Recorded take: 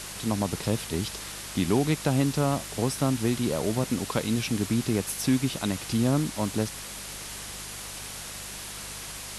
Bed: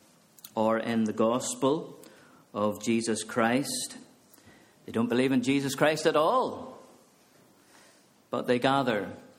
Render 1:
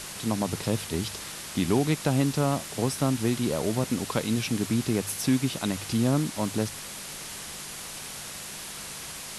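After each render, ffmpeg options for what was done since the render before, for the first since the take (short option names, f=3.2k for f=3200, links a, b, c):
-af "bandreject=f=50:t=h:w=4,bandreject=f=100:t=h:w=4"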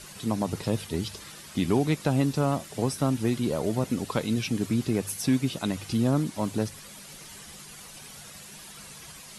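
-af "afftdn=nr=10:nf=-39"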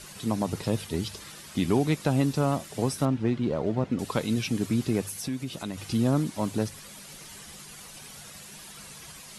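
-filter_complex "[0:a]asettb=1/sr,asplit=3[a][b][c];[a]atrim=end=3.054[d];[b]atrim=start=3.05:end=3.99,asetpts=PTS-STARTPTS,afade=t=in:d=0.004:c=qsin,afade=t=out:st=0.936:d=0.004:c=qsin,adynamicsmooth=sensitivity=1.5:basefreq=2.7k[e];[c]atrim=start=3.986[f];[d][e]acrossfade=d=0.004:c1=hsin:c2=qsin[g];[g][f]acrossfade=d=0.004:c1=qsin:c2=hsin,asettb=1/sr,asplit=3[h][i][j];[h]atrim=end=5.024[k];[i]atrim=start=5.02:end=5.78,asetpts=PTS-STARTPTS,afade=t=in:d=0.004:c=qsin,afade=t=out:st=0.756:d=0.004:c=qsin,acompressor=threshold=-34dB:ratio=2:attack=3.2:release=140:knee=1:detection=peak[l];[j]atrim=start=5.776[m];[k][l]acrossfade=d=0.004:c1=hsin:c2=qsin[n];[n][m]acrossfade=d=0.004:c1=qsin:c2=hsin"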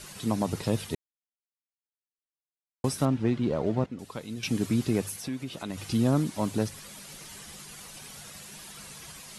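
-filter_complex "[0:a]asettb=1/sr,asplit=3[a][b][c];[a]atrim=end=5.164[d];[b]atrim=start=5.16:end=5.7,asetpts=PTS-STARTPTS,afade=t=in:d=0.004:c=qsin,afade=t=out:st=0.536:d=0.004:c=qsin,bass=f=250:g=-4,treble=f=4k:g=-5[e];[c]atrim=start=5.696[f];[d][e]acrossfade=d=0.004:c1=hsin:c2=qsin[g];[g][f]acrossfade=d=0.004:c1=qsin:c2=hsin,asplit=5[h][i][j][k][l];[h]atrim=end=0.95,asetpts=PTS-STARTPTS,afade=t=out:st=0.946:d=0.004:c=hsin[m];[i]atrim=start=0.95:end=2.84,asetpts=PTS-STARTPTS,volume=0[n];[j]atrim=start=2.84:end=3.862,asetpts=PTS-STARTPTS,afade=t=in:d=0.004:c=hsin[o];[k]atrim=start=3.858:end=4.432,asetpts=PTS-STARTPTS,volume=-10.5dB[p];[l]atrim=start=4.428[q];[m][n][o]concat=n=3:v=0:a=1[r];[r][p]acrossfade=d=0.004:c1=hsin:c2=hsin[s];[s][q]acrossfade=d=0.004:c1=hsin:c2=hsin"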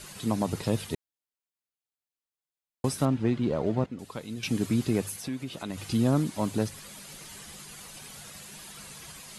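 -af "bandreject=f=5.6k:w=22"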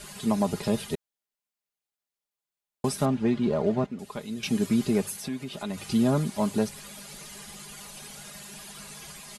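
-af "equalizer=f=700:t=o:w=0.77:g=2.5,aecho=1:1:4.9:0.61"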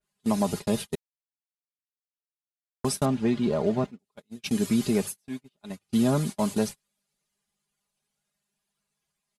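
-af "agate=range=-39dB:threshold=-31dB:ratio=16:detection=peak,adynamicequalizer=threshold=0.00562:dfrequency=2900:dqfactor=0.7:tfrequency=2900:tqfactor=0.7:attack=5:release=100:ratio=0.375:range=2:mode=boostabove:tftype=highshelf"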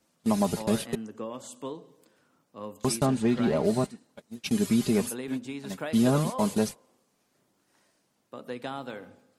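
-filter_complex "[1:a]volume=-11.5dB[a];[0:a][a]amix=inputs=2:normalize=0"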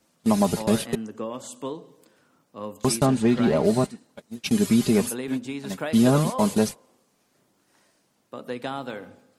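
-af "volume=4.5dB"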